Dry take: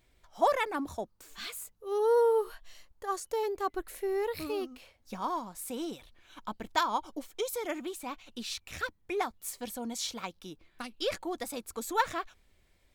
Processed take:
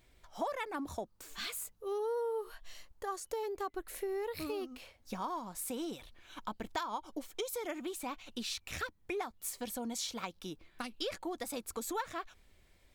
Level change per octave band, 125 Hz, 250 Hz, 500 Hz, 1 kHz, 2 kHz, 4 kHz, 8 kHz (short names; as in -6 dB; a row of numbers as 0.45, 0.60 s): -1.0, -3.0, -7.5, -7.5, -6.0, -3.0, -1.5 dB